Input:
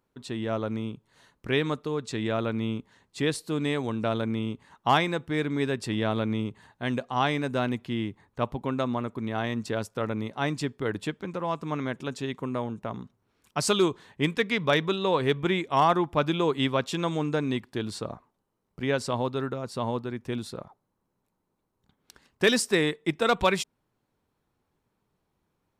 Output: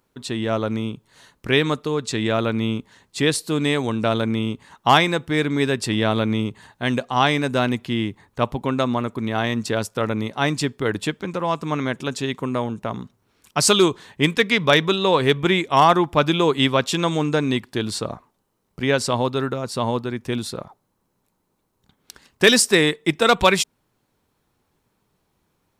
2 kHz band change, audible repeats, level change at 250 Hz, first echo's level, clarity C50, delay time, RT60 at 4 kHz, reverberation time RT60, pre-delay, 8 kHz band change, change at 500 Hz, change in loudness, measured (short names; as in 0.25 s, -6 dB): +8.5 dB, none, +6.5 dB, none, none, none, none, none, none, +11.5 dB, +6.5 dB, +7.5 dB